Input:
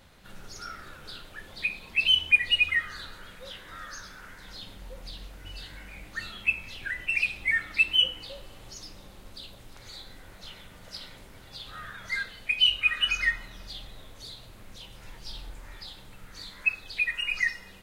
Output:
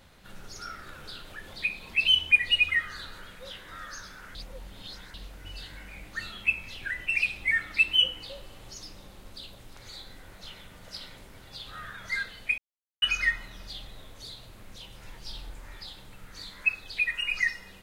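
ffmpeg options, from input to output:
ffmpeg -i in.wav -filter_complex "[0:a]asettb=1/sr,asplit=3[link_01][link_02][link_03];[link_01]atrim=end=0.894[link_04];[link_02]atrim=start=0.89:end=3.25,asetpts=PTS-STARTPTS,afade=type=in:duration=0.004:curve=qsin,afade=type=out:start_time=2.356:duration=0.004:curve=qsin,acompressor=mode=upward:threshold=-39dB:ratio=2.5:attack=3.2:release=140:knee=2.83:detection=peak[link_05];[link_03]atrim=start=3.246[link_06];[link_04][link_05]acrossfade=duration=0.004:curve1=hsin:curve2=qsin[link_07];[link_07][link_06]acrossfade=duration=0.004:curve1=qsin:curve2=hsin,asplit=5[link_08][link_09][link_10][link_11][link_12];[link_08]atrim=end=4.352[link_13];[link_09]atrim=start=4.348:end=5.142,asetpts=PTS-STARTPTS,areverse[link_14];[link_10]atrim=start=5.138:end=12.58,asetpts=PTS-STARTPTS,afade=type=out:start_time=7.438:duration=0.004:curve=hsin[link_15];[link_11]atrim=start=12.58:end=13.02,asetpts=PTS-STARTPTS,volume=0[link_16];[link_12]atrim=start=13.02,asetpts=PTS-STARTPTS,afade=type=in:duration=0.004:curve=hsin[link_17];[link_13][link_14]acrossfade=duration=0.004:curve1=hsin:curve2=hsin[link_18];[link_15][link_16][link_17]concat=n=3:v=0:a=1[link_19];[link_18][link_19]acrossfade=duration=0.004:curve1=hsin:curve2=hsin" out.wav

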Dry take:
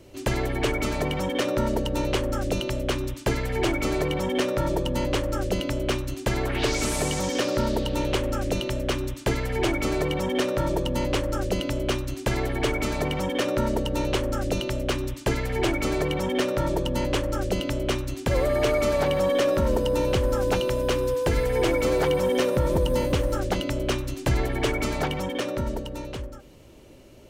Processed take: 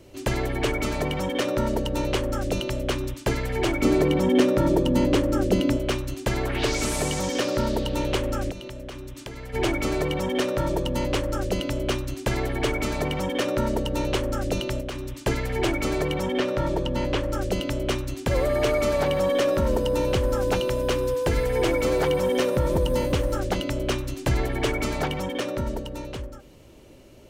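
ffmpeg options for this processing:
ffmpeg -i in.wav -filter_complex "[0:a]asettb=1/sr,asplit=3[link_01][link_02][link_03];[link_01]atrim=end=3.824[link_04];[link_02]atrim=start=3.82:end=5.77,asetpts=PTS-STARTPTS,afade=type=in:duration=0.004:curve=qsin,afade=type=out:start_time=1.946:duration=0.004:curve=qsin,equalizer=frequency=260:width=0.98:gain=9.5[link_05];[link_03]atrim=start=5.766[link_06];[link_04][link_05]acrossfade=duration=0.004:curve1=hsin:curve2=qsin[link_07];[link_07][link_06]acrossfade=duration=0.004:curve1=qsin:curve2=hsin,asplit=3[link_08][link_09][link_10];[link_08]afade=type=out:start_time=8.5:duration=0.02[link_11];[link_09]acompressor=threshold=-33dB:ratio=10:attack=3.2:release=140:knee=1:detection=peak,afade=type=in:start_time=8.5:duration=0.02,afade=type=out:start_time=9.53:duration=0.02[link_12];[link_10]afade=type=in:start_time=9.53:duration=0.02[link_13];[link_11][link_12][link_13]amix=inputs=3:normalize=0,asettb=1/sr,asplit=3[link_14][link_15][link_16];[link_14]atrim=end=14.804[link_17];[link_15]atrim=start=14.8:end=15.25,asetpts=PTS-STARTPTS,afade=type=in:duration=0.004:curve=qsin,afade=type=out:start_time=0.446:duration=0.004:curve=qsin,acompressor=threshold=-28dB:ratio=6:attack=3.2:release=140:knee=1:detection=peak[link_18];[link_16]atrim=start=15.246[link_19];[link_17][link_18]acrossfade=duration=0.004:curve1=hsin:curve2=qsin[link_20];[link_20][link_19]acrossfade=duration=0.004:curve1=qsin:curve2=hsin,asettb=1/sr,asplit=3[link_21][link_22][link_23];[link_21]atrim=end=16.294[link_24];[link_22]atrim=start=16.29:end=17.33,asetpts=PTS-STARTPTS,afade=type=in:duration=0.004:curve=qsin,afade=type=out:start_time=1.036:duration=0.004:curve=qsin,acrossover=split=5100[link_25][link_26];[link_26]acompressor=threshold=-51dB:ratio=4:attack=1:release=60[link_27];[link_25][link_27]amix=inputs=2:normalize=0[link_28];[link_23]atrim=start=17.326[link_29];[link_24][link_28]acrossfade=duration=0.004:curve1=hsin:curve2=qsin[link_30];[link_30][link_29]acrossfade=duration=0.004:curve1=qsin:curve2=hsin" out.wav

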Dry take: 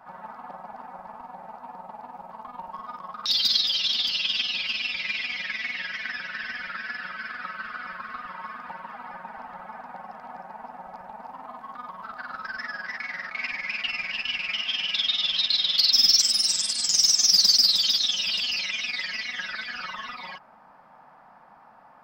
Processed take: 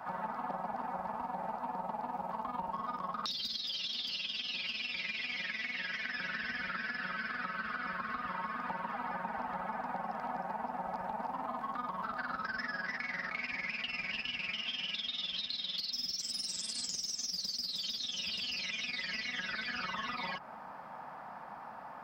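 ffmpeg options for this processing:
ffmpeg -i in.wav -filter_complex "[0:a]asettb=1/sr,asplit=3[link_01][link_02][link_03];[link_01]atrim=end=3.574[link_04];[link_02]atrim=start=3.57:end=6.19,asetpts=PTS-STARTPTS,afade=type=in:duration=0.004:curve=qsin,afade=type=out:start_time=2.616:duration=0.004:curve=qsin,lowshelf=frequency=180:gain=-6.5[link_05];[link_03]atrim=start=6.186[link_06];[link_04][link_05]acrossfade=duration=0.004:curve1=hsin:curve2=qsin[link_07];[link_07][link_06]acrossfade=duration=0.004:curve1=qsin:curve2=hsin,acompressor=threshold=-31dB:ratio=6,highpass=42,acrossover=split=470[link_08][link_09];[link_09]acompressor=threshold=-42dB:ratio=5[link_10];[link_08][link_10]amix=inputs=2:normalize=0,volume=5.5dB" out.wav

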